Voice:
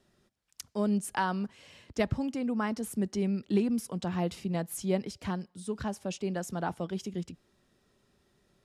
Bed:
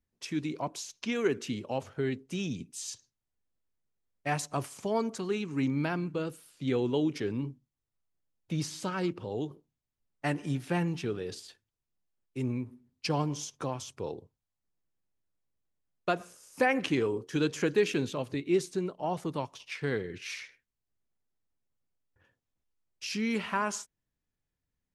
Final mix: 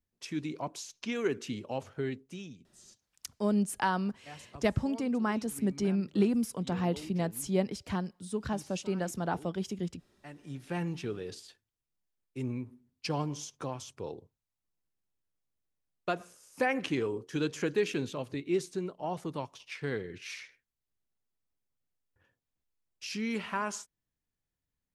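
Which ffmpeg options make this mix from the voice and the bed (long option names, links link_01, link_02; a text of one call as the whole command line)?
ffmpeg -i stem1.wav -i stem2.wav -filter_complex "[0:a]adelay=2650,volume=0.5dB[link_01];[1:a]volume=12dB,afade=type=out:start_time=2.01:duration=0.58:silence=0.177828,afade=type=in:start_time=10.35:duration=0.55:silence=0.188365[link_02];[link_01][link_02]amix=inputs=2:normalize=0" out.wav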